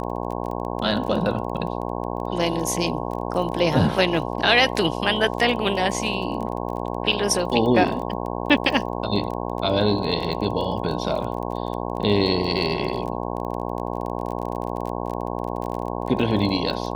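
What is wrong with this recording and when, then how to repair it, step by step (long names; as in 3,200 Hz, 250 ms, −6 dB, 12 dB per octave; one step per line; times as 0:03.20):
mains buzz 60 Hz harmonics 18 −28 dBFS
surface crackle 24 per second −29 dBFS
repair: click removal
hum removal 60 Hz, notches 18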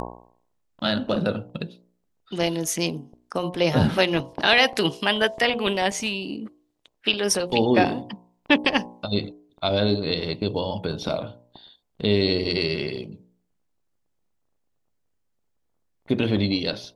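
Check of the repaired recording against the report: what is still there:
none of them is left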